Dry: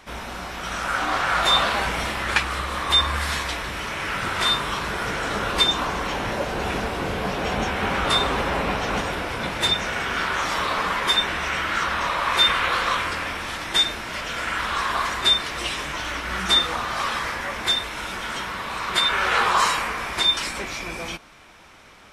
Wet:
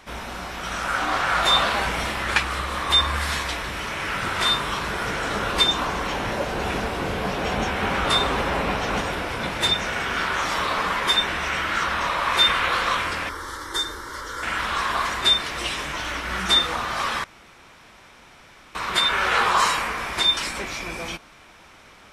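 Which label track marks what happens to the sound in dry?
13.290000	14.430000	phaser with its sweep stopped centre 690 Hz, stages 6
17.240000	18.750000	fill with room tone

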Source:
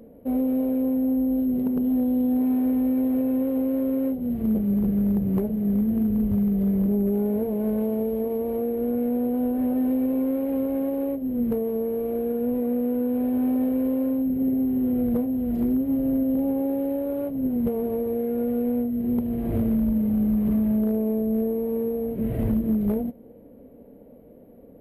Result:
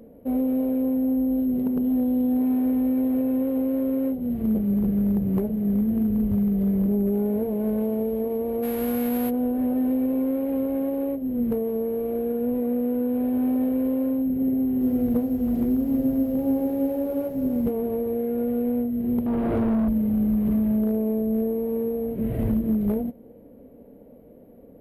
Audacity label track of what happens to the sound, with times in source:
8.620000	9.290000	spectral envelope flattened exponent 0.6
14.490000	17.710000	feedback echo at a low word length 322 ms, feedback 35%, word length 9 bits, level −8 dB
19.260000	19.880000	mid-hump overdrive drive 23 dB, tone 1,200 Hz, clips at −16 dBFS

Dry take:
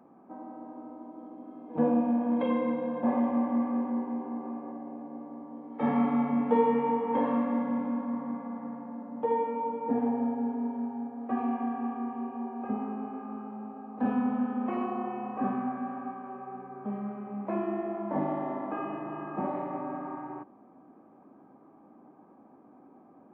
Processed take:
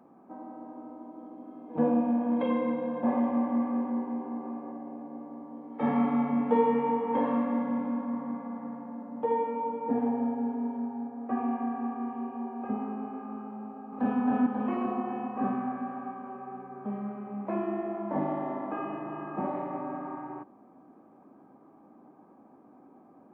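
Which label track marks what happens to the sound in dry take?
10.780000	12.010000	low-pass filter 2,700 Hz
13.650000	14.190000	delay throw 270 ms, feedback 65%, level −0.5 dB

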